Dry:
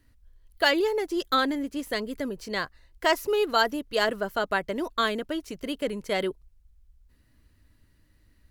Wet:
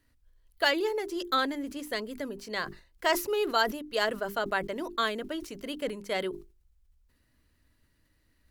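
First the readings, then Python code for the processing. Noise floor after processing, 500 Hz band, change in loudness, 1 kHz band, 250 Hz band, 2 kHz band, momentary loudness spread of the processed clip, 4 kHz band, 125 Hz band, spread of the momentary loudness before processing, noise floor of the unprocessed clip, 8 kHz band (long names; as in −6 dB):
−70 dBFS, −4.0 dB, −3.5 dB, −3.0 dB, −5.0 dB, −3.0 dB, 10 LU, −3.0 dB, −4.0 dB, 10 LU, −63 dBFS, 0.0 dB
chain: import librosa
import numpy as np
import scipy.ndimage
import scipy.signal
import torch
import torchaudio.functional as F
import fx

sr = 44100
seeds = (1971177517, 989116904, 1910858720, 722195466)

y = fx.low_shelf(x, sr, hz=210.0, db=-5.5)
y = fx.hum_notches(y, sr, base_hz=50, count=8)
y = fx.sustainer(y, sr, db_per_s=130.0)
y = y * 10.0 ** (-3.0 / 20.0)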